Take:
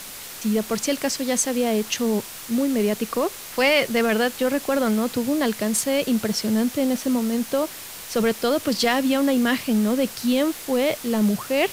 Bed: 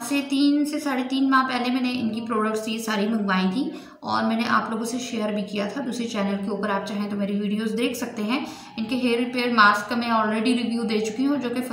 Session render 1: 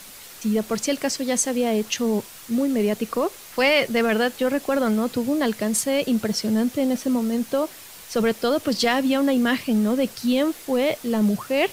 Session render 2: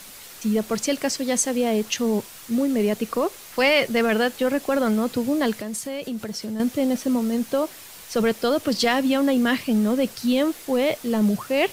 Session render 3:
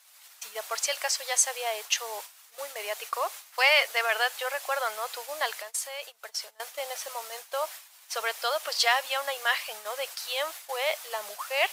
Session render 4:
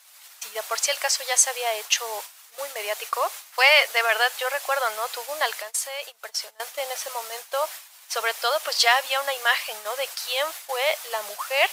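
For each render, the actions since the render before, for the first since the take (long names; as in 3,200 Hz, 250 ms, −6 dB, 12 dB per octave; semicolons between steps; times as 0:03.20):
broadband denoise 6 dB, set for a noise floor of −37 dBFS
0:05.53–0:06.60: downward compressor 2.5 to 1, threshold −30 dBFS
inverse Chebyshev high-pass filter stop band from 270 Hz, stop band 50 dB; noise gate −40 dBFS, range −17 dB
level +5 dB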